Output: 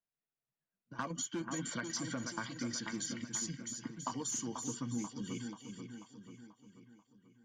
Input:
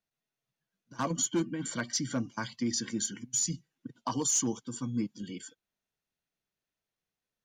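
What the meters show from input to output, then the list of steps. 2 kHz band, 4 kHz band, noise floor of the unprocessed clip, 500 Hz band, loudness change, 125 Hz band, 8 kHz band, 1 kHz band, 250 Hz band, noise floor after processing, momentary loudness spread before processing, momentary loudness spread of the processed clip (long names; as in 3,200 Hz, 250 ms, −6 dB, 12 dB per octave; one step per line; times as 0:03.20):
−2.0 dB, −6.0 dB, below −85 dBFS, −7.5 dB, −7.5 dB, −6.0 dB, −8.0 dB, −4.5 dB, −6.5 dB, below −85 dBFS, 14 LU, 15 LU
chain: noise gate −59 dBFS, range −9 dB
low-pass that shuts in the quiet parts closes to 2,300 Hz, open at −28.5 dBFS
dynamic equaliser 1,700 Hz, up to +5 dB, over −49 dBFS, Q 0.95
downward compressor 6 to 1, threshold −38 dBFS, peak gain reduction 13 dB
on a send: echo with a time of its own for lows and highs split 2,300 Hz, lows 487 ms, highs 330 ms, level −6 dB
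on the sum: level +1 dB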